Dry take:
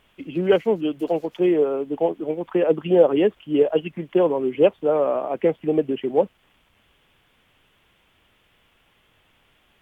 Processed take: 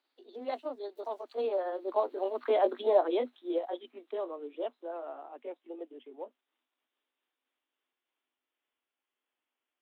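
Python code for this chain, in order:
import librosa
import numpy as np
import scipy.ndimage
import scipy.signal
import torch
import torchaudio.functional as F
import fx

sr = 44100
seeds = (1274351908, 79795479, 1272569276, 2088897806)

y = fx.pitch_glide(x, sr, semitones=5.0, runs='ending unshifted')
y = fx.doppler_pass(y, sr, speed_mps=10, closest_m=4.9, pass_at_s=2.4)
y = scipy.signal.sosfilt(scipy.signal.cheby1(6, 3, 240.0, 'highpass', fs=sr, output='sos'), y)
y = y * librosa.db_to_amplitude(-3.0)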